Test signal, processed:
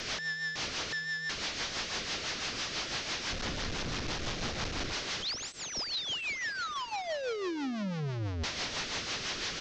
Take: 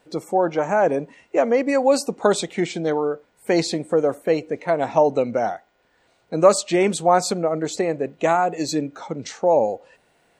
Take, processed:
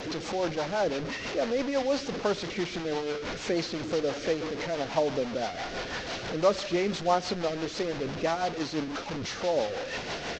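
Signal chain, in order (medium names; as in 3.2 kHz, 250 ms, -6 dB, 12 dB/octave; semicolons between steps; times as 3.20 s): one-bit delta coder 32 kbps, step -19 dBFS; on a send: feedback delay 124 ms, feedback 59%, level -21 dB; on the sum: rotary cabinet horn 6 Hz; tape noise reduction on one side only decoder only; trim -7.5 dB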